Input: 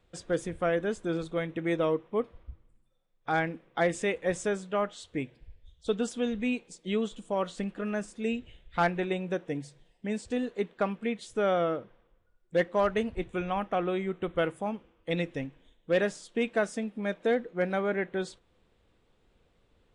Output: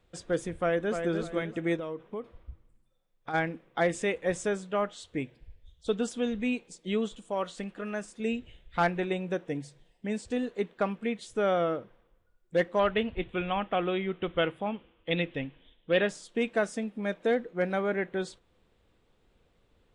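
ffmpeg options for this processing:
ffmpeg -i in.wav -filter_complex "[0:a]asplit=2[link_01][link_02];[link_02]afade=type=in:start_time=0.61:duration=0.01,afade=type=out:start_time=1.12:duration=0.01,aecho=0:1:300|600|900|1200:0.473151|0.141945|0.0425836|0.0127751[link_03];[link_01][link_03]amix=inputs=2:normalize=0,asplit=3[link_04][link_05][link_06];[link_04]afade=type=out:start_time=1.76:duration=0.02[link_07];[link_05]acompressor=threshold=-33dB:ratio=6:attack=3.2:release=140:knee=1:detection=peak,afade=type=in:start_time=1.76:duration=0.02,afade=type=out:start_time=3.33:duration=0.02[link_08];[link_06]afade=type=in:start_time=3.33:duration=0.02[link_09];[link_07][link_08][link_09]amix=inputs=3:normalize=0,asettb=1/sr,asplit=3[link_10][link_11][link_12];[link_10]atrim=end=7.154[link_13];[link_11]atrim=start=7.15:end=8.2,asetpts=PTS-STARTPTS,afade=type=in:duration=0.004:curve=qsin,afade=type=out:start_time=1.046:duration=0.004:curve=qsin,lowshelf=frequency=360:gain=-6[link_14];[link_12]atrim=start=8.196[link_15];[link_13][link_14]acrossfade=duration=0.004:curve1=hsin:curve2=qsin[link_16];[link_16][link_15]acrossfade=duration=0.004:curve1=qsin:curve2=hsin,asettb=1/sr,asplit=3[link_17][link_18][link_19];[link_17]atrim=end=12.794[link_20];[link_18]atrim=start=12.79:end=16.09,asetpts=PTS-STARTPTS,afade=type=in:duration=0.004:curve=qsin,afade=type=out:start_time=3.296:duration=0.004:curve=qsin,highshelf=frequency=4600:width_type=q:width=3:gain=-12.5[link_21];[link_19]atrim=start=16.086[link_22];[link_20][link_21]acrossfade=duration=0.004:curve1=hsin:curve2=qsin[link_23];[link_23][link_22]acrossfade=duration=0.004:curve1=qsin:curve2=hsin" out.wav

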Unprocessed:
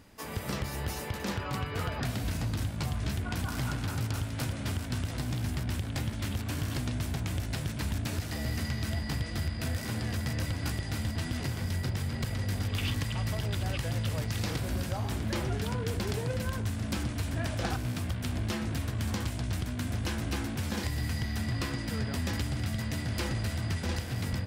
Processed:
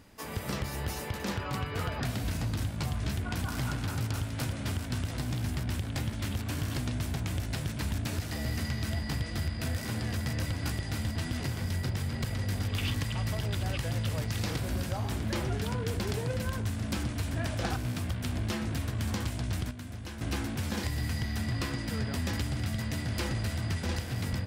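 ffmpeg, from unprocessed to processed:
ffmpeg -i in.wav -filter_complex "[0:a]asplit=3[link_01][link_02][link_03];[link_01]atrim=end=19.712[link_04];[link_02]atrim=start=19.708:end=20.212,asetpts=PTS-STARTPTS,volume=-8.5dB[link_05];[link_03]atrim=start=20.208[link_06];[link_04][link_05]acrossfade=duration=0.004:curve1=hsin:curve2=hsin[link_07];[link_07][link_06]acrossfade=duration=0.004:curve1=hsin:curve2=hsin" out.wav

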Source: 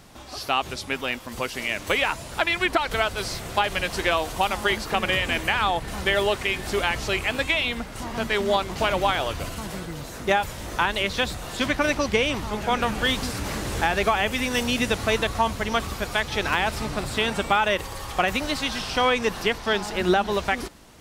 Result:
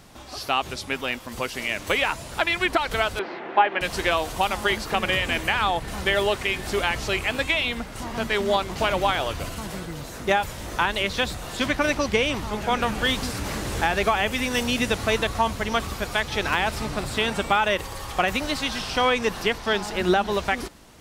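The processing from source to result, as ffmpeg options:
ffmpeg -i in.wav -filter_complex "[0:a]asettb=1/sr,asplit=3[link_01][link_02][link_03];[link_01]atrim=end=3.194[link_04];[link_02]atrim=start=3.19:end=3.81,asetpts=PTS-STARTPTS,afade=type=in:duration=0.004:curve=qsin,afade=type=out:start_time=0.616:duration=0.004:curve=qsin,highpass=frequency=230:width=0.5412,highpass=frequency=230:width=1.3066,equalizer=frequency=350:width_type=q:width=4:gain=8,equalizer=frequency=850:width_type=q:width=4:gain=7,equalizer=frequency=1700:width_type=q:width=4:gain=4,lowpass=frequency=2700:width=0.5412,lowpass=frequency=2700:width=1.3066[link_05];[link_03]atrim=start=3.806[link_06];[link_04][link_05]acrossfade=duration=0.004:curve1=hsin:curve2=qsin[link_07];[link_07][link_06]acrossfade=duration=0.004:curve1=qsin:curve2=hsin" out.wav

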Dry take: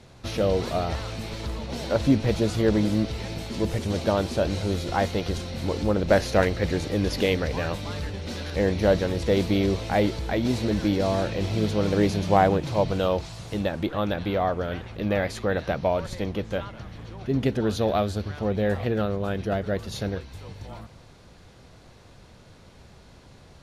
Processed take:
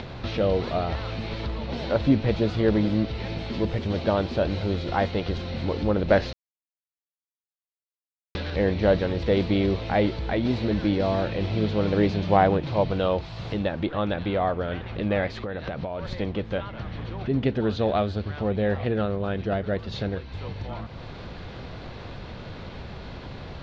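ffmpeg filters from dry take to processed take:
ffmpeg -i in.wav -filter_complex "[0:a]asettb=1/sr,asplit=3[link_01][link_02][link_03];[link_01]atrim=end=15.294[link_04];[link_02]atrim=start=15.29:end=16.08,asetpts=PTS-STARTPTS,afade=type=in:duration=0.004:curve=qsin,afade=type=out:start_time=0.786:duration=0.004:curve=qsin,acompressor=threshold=-30dB:ratio=10:attack=3.2:release=140:knee=1:detection=peak[link_05];[link_03]atrim=start=16.076[link_06];[link_04][link_05]acrossfade=duration=0.004:curve1=hsin:curve2=qsin[link_07];[link_07][link_06]acrossfade=duration=0.004:curve1=qsin:curve2=hsin,asplit=3[link_08][link_09][link_10];[link_08]atrim=end=6.33,asetpts=PTS-STARTPTS,afade=type=out:start_time=6.326:duration=0.004:curve=hsin[link_11];[link_09]atrim=start=6.33:end=8.35,asetpts=PTS-STARTPTS,volume=0[link_12];[link_10]atrim=start=8.35,asetpts=PTS-STARTPTS,afade=type=in:duration=0.004:curve=hsin[link_13];[link_11][link_12][link_13]concat=n=3:v=0:a=1,acompressor=mode=upward:threshold=-25dB:ratio=2.5,lowpass=frequency=4200:width=0.5412,lowpass=frequency=4200:width=1.3066" out.wav

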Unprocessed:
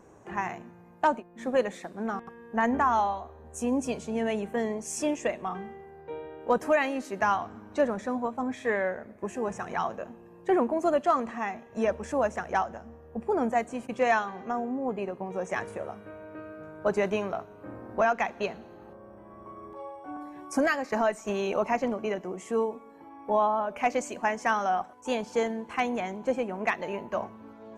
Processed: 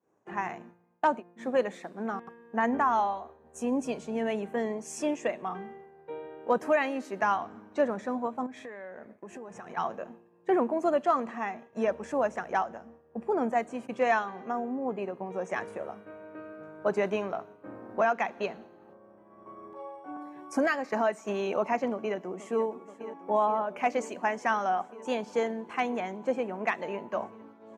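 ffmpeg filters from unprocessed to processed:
ffmpeg -i in.wav -filter_complex "[0:a]asettb=1/sr,asplit=3[link_01][link_02][link_03];[link_01]atrim=end=8.464[link_04];[link_02]atrim=start=8.46:end=9.77,asetpts=PTS-STARTPTS,afade=type=in:duration=0.004:curve=qsin,afade=type=out:start_time=1.306:duration=0.004:curve=qsin,acompressor=threshold=-37dB:ratio=16:attack=3.2:release=140:knee=1:detection=peak[link_05];[link_03]atrim=start=9.766[link_06];[link_04][link_05]acrossfade=duration=0.004:curve1=hsin:curve2=qsin[link_07];[link_07][link_06]acrossfade=duration=0.004:curve1=qsin:curve2=hsin,asplit=2[link_08][link_09];[link_09]afade=type=in:start_time=21.91:duration=0.01,afade=type=out:start_time=22.65:duration=0.01,aecho=0:1:480|960|1440|1920|2400|2880|3360|3840|4320|4800|5280|5760:0.211349|0.179647|0.1527|0.129795|0.110325|0.0937766|0.0797101|0.0677536|0.0575906|0.048952|0.0416092|0.0353678[link_10];[link_08][link_10]amix=inputs=2:normalize=0,agate=range=-33dB:threshold=-43dB:ratio=3:detection=peak,highpass=160,highshelf=frequency=5300:gain=-7,volume=-1dB" out.wav

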